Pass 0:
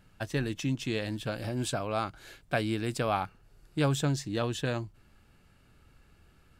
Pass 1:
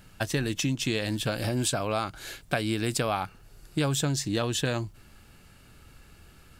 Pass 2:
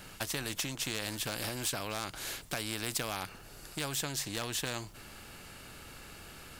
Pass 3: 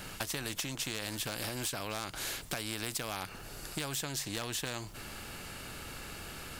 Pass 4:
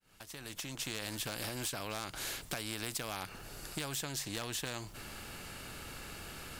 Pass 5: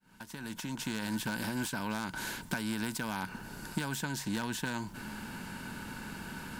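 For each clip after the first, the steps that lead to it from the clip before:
treble shelf 3.7 kHz +7.5 dB; compression 5:1, threshold -31 dBFS, peak gain reduction 8.5 dB; trim +7 dB
overload inside the chain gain 19 dB; spectrum-flattening compressor 2:1
compression 3:1, threshold -40 dBFS, peak gain reduction 8.5 dB; trim +5 dB
fade-in on the opening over 0.92 s; trim -2 dB
small resonant body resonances 210/930/1500 Hz, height 16 dB, ringing for 35 ms; trim -2 dB

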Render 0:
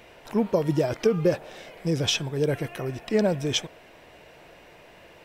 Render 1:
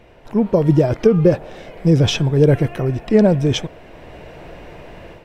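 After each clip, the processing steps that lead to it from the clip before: tilt EQ -2.5 dB/octave; level rider gain up to 10.5 dB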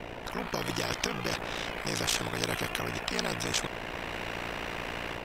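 ring modulator 29 Hz; spectrum-flattening compressor 4:1; trim -6 dB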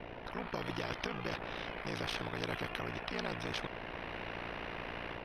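boxcar filter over 6 samples; trim -5.5 dB

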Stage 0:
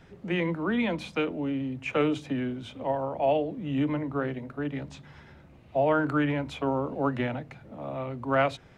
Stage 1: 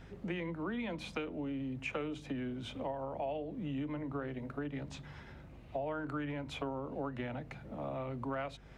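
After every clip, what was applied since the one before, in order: compression 6:1, threshold -35 dBFS, peak gain reduction 15 dB; hum 50 Hz, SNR 18 dB; trim -1 dB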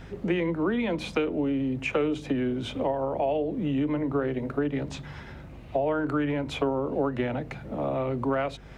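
dynamic bell 400 Hz, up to +6 dB, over -53 dBFS, Q 1.5; trim +9 dB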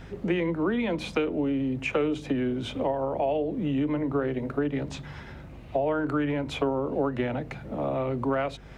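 no audible change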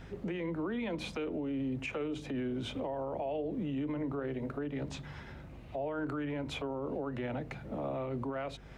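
peak limiter -23.5 dBFS, peak gain reduction 10 dB; trim -5 dB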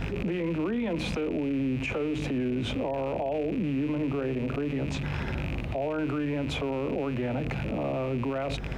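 rattle on loud lows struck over -46 dBFS, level -36 dBFS; tilt shelf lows +3.5 dB; in parallel at +0.5 dB: compressor with a negative ratio -44 dBFS, ratio -1; on the sum: trim +2.5 dB

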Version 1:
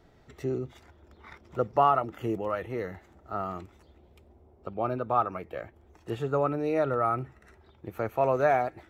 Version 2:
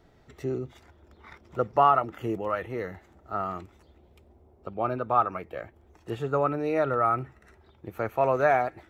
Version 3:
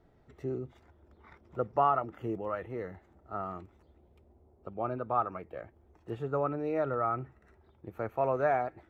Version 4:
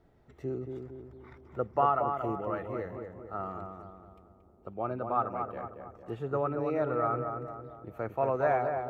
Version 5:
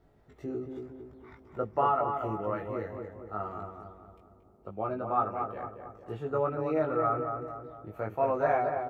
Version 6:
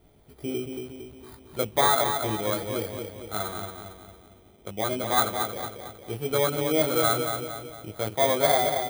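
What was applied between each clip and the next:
dynamic bell 1.6 kHz, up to +4 dB, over -39 dBFS, Q 0.75
treble shelf 2.2 kHz -11 dB; trim -4.5 dB
filtered feedback delay 228 ms, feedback 52%, low-pass 1.6 kHz, level -5 dB
doubling 19 ms -3 dB; trim -1 dB
bit-reversed sample order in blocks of 16 samples; trim +5 dB

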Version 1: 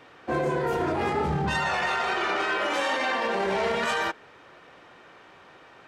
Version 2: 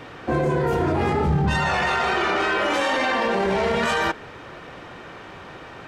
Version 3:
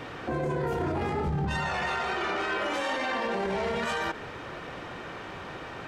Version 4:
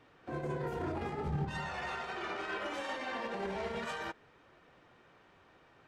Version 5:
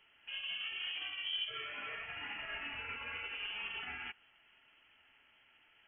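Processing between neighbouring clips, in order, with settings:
bass shelf 210 Hz +11 dB; in parallel at +1.5 dB: compressor with a negative ratio -31 dBFS, ratio -1; on the sum: trim -1 dB
peak limiter -22 dBFS, peak gain reduction 11 dB
flange 1.1 Hz, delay 2.5 ms, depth 6.6 ms, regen -66%; upward expansion 2.5:1, over -43 dBFS
frequency inversion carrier 3.2 kHz; trim -4.5 dB

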